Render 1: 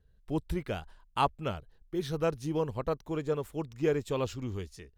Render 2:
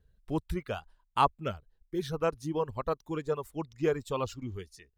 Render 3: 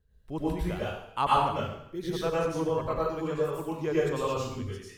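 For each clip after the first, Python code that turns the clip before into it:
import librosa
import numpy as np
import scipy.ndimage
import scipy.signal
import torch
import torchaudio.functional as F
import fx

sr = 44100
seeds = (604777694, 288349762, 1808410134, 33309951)

y1 = fx.dereverb_blind(x, sr, rt60_s=1.4)
y1 = fx.dynamic_eq(y1, sr, hz=1100.0, q=2.1, threshold_db=-50.0, ratio=4.0, max_db=5)
y2 = fx.rev_plate(y1, sr, seeds[0], rt60_s=0.72, hf_ratio=1.0, predelay_ms=85, drr_db=-7.0)
y2 = F.gain(torch.from_numpy(y2), -4.0).numpy()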